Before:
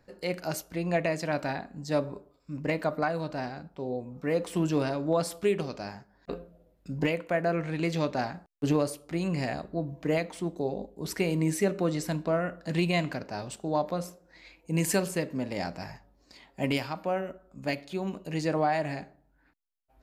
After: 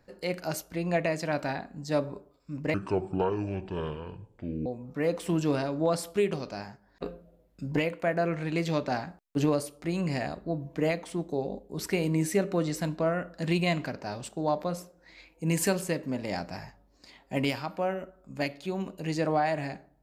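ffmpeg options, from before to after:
ffmpeg -i in.wav -filter_complex "[0:a]asplit=3[link_01][link_02][link_03];[link_01]atrim=end=2.744[link_04];[link_02]atrim=start=2.74:end=3.93,asetpts=PTS-STARTPTS,asetrate=27342,aresample=44100[link_05];[link_03]atrim=start=3.926[link_06];[link_04][link_05]acrossfade=duration=0.004:curve1=hsin:curve2=hsin[link_07];[link_07][link_06]acrossfade=duration=0.004:curve1=hsin:curve2=hsin" out.wav

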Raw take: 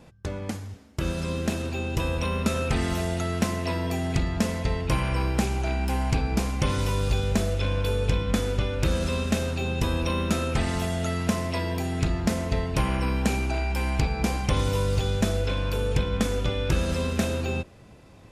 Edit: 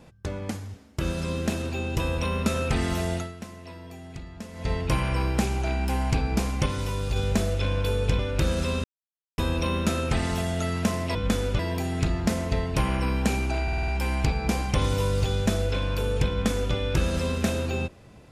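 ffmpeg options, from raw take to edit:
ffmpeg -i in.wav -filter_complex "[0:a]asplit=15[link_01][link_02][link_03][link_04][link_05][link_06][link_07][link_08][link_09][link_10][link_11][link_12][link_13][link_14][link_15];[link_01]atrim=end=3.38,asetpts=PTS-STARTPTS,afade=type=out:start_time=3.16:duration=0.22:curve=qua:silence=0.188365[link_16];[link_02]atrim=start=3.38:end=4.48,asetpts=PTS-STARTPTS,volume=-14.5dB[link_17];[link_03]atrim=start=4.48:end=6.662,asetpts=PTS-STARTPTS,afade=type=in:duration=0.22:curve=qua:silence=0.188365[link_18];[link_04]atrim=start=6.658:end=7.162,asetpts=PTS-STARTPTS,volume=-3.5dB[link_19];[link_05]atrim=start=7.158:end=8.192[link_20];[link_06]atrim=start=8.628:end=9.28,asetpts=PTS-STARTPTS,afade=type=out:start_time=0.648:duration=0.004:curve=hsin[link_21];[link_07]atrim=start=9.28:end=9.82,asetpts=PTS-STARTPTS,volume=0[link_22];[link_08]atrim=start=9.82:end=11.592,asetpts=PTS-STARTPTS,afade=type=in:duration=0.004:curve=hsin[link_23];[link_09]atrim=start=8.188:end=8.632[link_24];[link_10]atrim=start=11.588:end=13.682[link_25];[link_11]atrim=start=13.628:end=13.682[link_26];[link_12]atrim=start=13.628:end=13.682[link_27];[link_13]atrim=start=13.628:end=13.682[link_28];[link_14]atrim=start=13.628:end=13.682[link_29];[link_15]atrim=start=13.628[link_30];[link_16][link_17][link_18]concat=n=3:v=0:a=1[link_31];[link_31][link_19]acrossfade=duration=0.004:curve1=hsin:curve2=hsin[link_32];[link_32][link_20]acrossfade=duration=0.004:curve1=hsin:curve2=hsin[link_33];[link_21][link_22][link_23]concat=n=3:v=0:a=1[link_34];[link_33][link_34]acrossfade=duration=0.004:curve1=hsin:curve2=hsin[link_35];[link_35][link_24]acrossfade=duration=0.004:curve1=hsin:curve2=hsin[link_36];[link_36][link_25]acrossfade=duration=0.004:curve1=hsin:curve2=hsin[link_37];[link_37][link_26]acrossfade=duration=0.004:curve1=hsin:curve2=hsin[link_38];[link_38][link_27]acrossfade=duration=0.004:curve1=hsin:curve2=hsin[link_39];[link_39][link_28]acrossfade=duration=0.004:curve1=hsin:curve2=hsin[link_40];[link_40][link_29]acrossfade=duration=0.004:curve1=hsin:curve2=hsin[link_41];[link_41][link_30]acrossfade=duration=0.004:curve1=hsin:curve2=hsin" out.wav

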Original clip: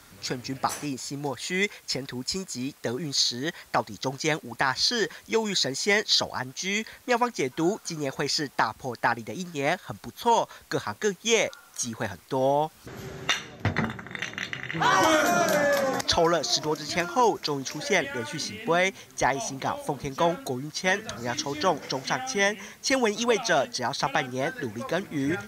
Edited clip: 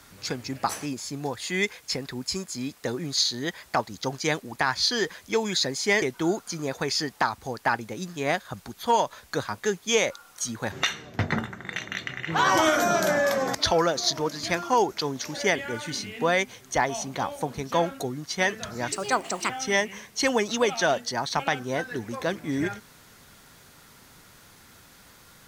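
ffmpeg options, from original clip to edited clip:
ffmpeg -i in.wav -filter_complex "[0:a]asplit=5[link_01][link_02][link_03][link_04][link_05];[link_01]atrim=end=6.022[link_06];[link_02]atrim=start=7.398:end=12.102[link_07];[link_03]atrim=start=13.178:end=21.384[link_08];[link_04]atrim=start=21.38:end=22.17,asetpts=PTS-STARTPTS,asetrate=60417,aresample=44100[link_09];[link_05]atrim=start=22.166[link_10];[link_06][link_07]acrossfade=duration=0.004:curve1=hsin:curve2=hsin[link_11];[link_11][link_08]acrossfade=duration=0.004:curve1=hsin:curve2=hsin[link_12];[link_12][link_09]acrossfade=duration=0.004:curve1=hsin:curve2=hsin[link_13];[link_13][link_10]acrossfade=duration=0.004:curve1=hsin:curve2=hsin" out.wav

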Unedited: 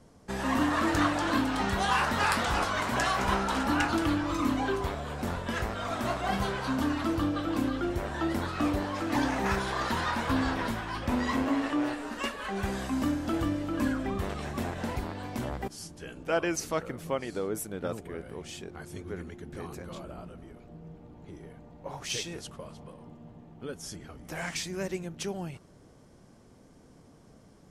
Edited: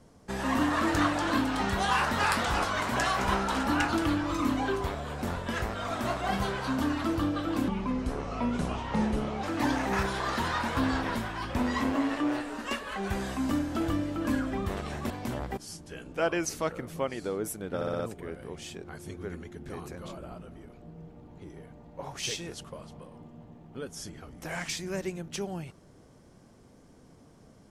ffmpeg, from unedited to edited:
ffmpeg -i in.wav -filter_complex "[0:a]asplit=8[link_01][link_02][link_03][link_04][link_05][link_06][link_07][link_08];[link_01]atrim=end=7.684[link_09];[link_02]atrim=start=7.68:end=8.96,asetpts=PTS-STARTPTS,asetrate=32193,aresample=44100,atrim=end_sample=77326,asetpts=PTS-STARTPTS[link_10];[link_03]atrim=start=8.956:end=14.632[link_11];[link_04]atrim=start=15.208:end=17.922[link_12];[link_05]atrim=start=17.858:end=17.922[link_13];[link_06]atrim=start=17.858:end=17.922[link_14];[link_07]atrim=start=17.858:end=17.922[link_15];[link_08]atrim=start=17.858[link_16];[link_09][link_10]acrossfade=duration=0.004:curve1=hsin:curve2=hsin[link_17];[link_17][link_11]acrossfade=duration=0.004:curve1=hsin:curve2=hsin[link_18];[link_18][link_12]acrossfade=duration=0.004:curve1=hsin:curve2=hsin[link_19];[link_19][link_13]acrossfade=duration=0.004:curve1=hsin:curve2=hsin[link_20];[link_20][link_14]acrossfade=duration=0.004:curve1=hsin:curve2=hsin[link_21];[link_21][link_15]acrossfade=duration=0.004:curve1=hsin:curve2=hsin[link_22];[link_22][link_16]acrossfade=duration=0.004:curve1=hsin:curve2=hsin" out.wav

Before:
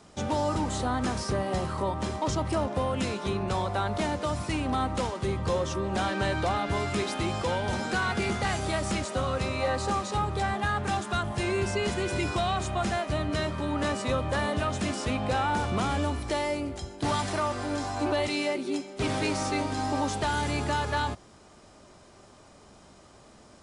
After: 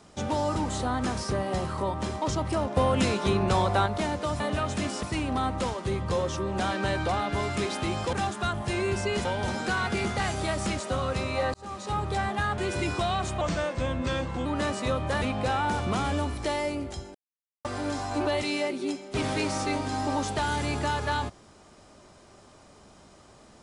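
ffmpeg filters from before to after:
ffmpeg -i in.wav -filter_complex "[0:a]asplit=14[link_01][link_02][link_03][link_04][link_05][link_06][link_07][link_08][link_09][link_10][link_11][link_12][link_13][link_14];[link_01]atrim=end=2.772[link_15];[link_02]atrim=start=2.768:end=3.862,asetpts=PTS-STARTPTS,volume=5dB[link_16];[link_03]atrim=start=3.858:end=4.402[link_17];[link_04]atrim=start=14.438:end=15.072[link_18];[link_05]atrim=start=4.398:end=7.502[link_19];[link_06]atrim=start=10.828:end=11.952[link_20];[link_07]atrim=start=7.498:end=9.79,asetpts=PTS-STARTPTS,afade=type=out:start_time=2.288:duration=0.004:curve=hsin[link_21];[link_08]atrim=start=9.79:end=10.832,asetpts=PTS-STARTPTS,afade=type=in:duration=0.48[link_22];[link_09]atrim=start=11.948:end=12.784[link_23];[link_10]atrim=start=12.78:end=13.68,asetpts=PTS-STARTPTS,asetrate=37926,aresample=44100,atrim=end_sample=46151,asetpts=PTS-STARTPTS[link_24];[link_11]atrim=start=13.676:end=14.442[link_25];[link_12]atrim=start=15.068:end=17,asetpts=PTS-STARTPTS,afade=type=out:start_time=1.928:duration=0.004:curve=hsin[link_26];[link_13]atrim=start=17:end=17.5,asetpts=PTS-STARTPTS,volume=0[link_27];[link_14]atrim=start=17.5,asetpts=PTS-STARTPTS,afade=type=in:duration=0.004:curve=hsin[link_28];[link_15][link_16]acrossfade=duration=0.004:curve1=hsin:curve2=hsin[link_29];[link_29][link_17]acrossfade=duration=0.004:curve1=hsin:curve2=hsin[link_30];[link_30][link_18]acrossfade=duration=0.004:curve1=hsin:curve2=hsin[link_31];[link_31][link_19]acrossfade=duration=0.004:curve1=hsin:curve2=hsin[link_32];[link_32][link_20]acrossfade=duration=0.004:curve1=hsin:curve2=hsin[link_33];[link_21][link_22]concat=n=2:v=0:a=1[link_34];[link_33][link_34]acrossfade=duration=0.004:curve1=hsin:curve2=hsin[link_35];[link_35][link_23]acrossfade=duration=0.004:curve1=hsin:curve2=hsin[link_36];[link_36][link_24]acrossfade=duration=0.004:curve1=hsin:curve2=hsin[link_37];[link_37][link_25]acrossfade=duration=0.004:curve1=hsin:curve2=hsin[link_38];[link_26][link_27][link_28]concat=n=3:v=0:a=1[link_39];[link_38][link_39]acrossfade=duration=0.004:curve1=hsin:curve2=hsin" out.wav

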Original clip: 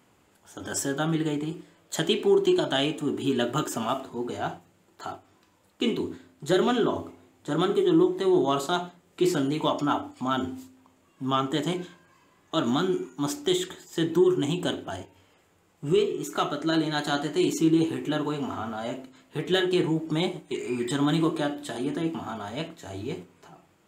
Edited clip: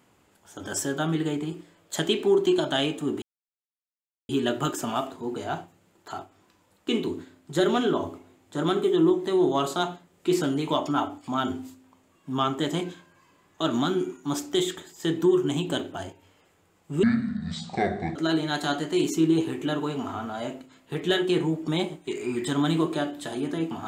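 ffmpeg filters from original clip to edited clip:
ffmpeg -i in.wav -filter_complex "[0:a]asplit=4[link_01][link_02][link_03][link_04];[link_01]atrim=end=3.22,asetpts=PTS-STARTPTS,afade=type=out:start_time=3.216:duration=0.004:curve=hsin,apad=pad_dur=1.07[link_05];[link_02]atrim=start=3.22:end=15.964,asetpts=PTS-STARTPTS,afade=type=in:duration=0.004:curve=hsin[link_06];[link_03]atrim=start=15.96:end=16.59,asetpts=PTS-STARTPTS,asetrate=24696,aresample=44100,atrim=end_sample=49612,asetpts=PTS-STARTPTS[link_07];[link_04]atrim=start=16.586[link_08];[link_05][link_06]concat=n=2:v=0:a=1[link_09];[link_09][link_07]acrossfade=duration=0.004:curve1=hsin:curve2=hsin[link_10];[link_10][link_08]acrossfade=duration=0.004:curve1=hsin:curve2=hsin" out.wav

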